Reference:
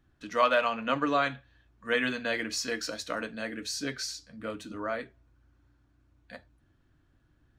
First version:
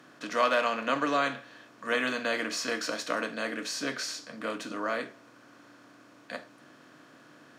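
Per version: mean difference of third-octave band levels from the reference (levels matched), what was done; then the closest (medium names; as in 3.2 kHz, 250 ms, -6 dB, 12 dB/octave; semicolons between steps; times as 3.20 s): 6.5 dB: spectral levelling over time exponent 0.6; high-pass 150 Hz 24 dB/octave; trim -3 dB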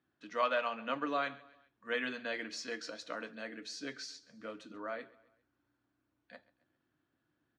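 3.0 dB: band-pass 210–5500 Hz; feedback delay 134 ms, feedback 46%, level -21 dB; trim -7.5 dB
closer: second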